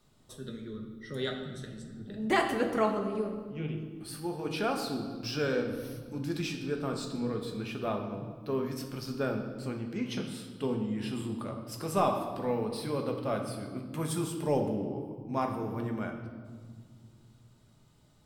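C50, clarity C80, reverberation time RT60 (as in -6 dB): 6.0 dB, 8.0 dB, 1.8 s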